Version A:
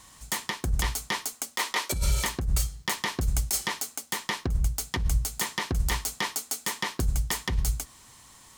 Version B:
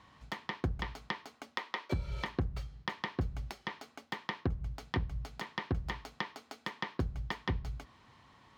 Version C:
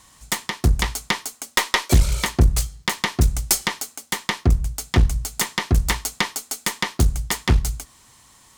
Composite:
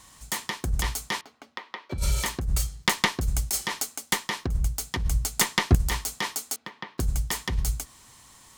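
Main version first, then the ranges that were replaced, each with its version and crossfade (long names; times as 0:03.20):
A
0:01.21–0:01.98: punch in from B
0:02.67–0:03.12: punch in from C
0:03.72–0:04.19: punch in from C
0:05.24–0:05.75: punch in from C
0:06.56–0:06.98: punch in from B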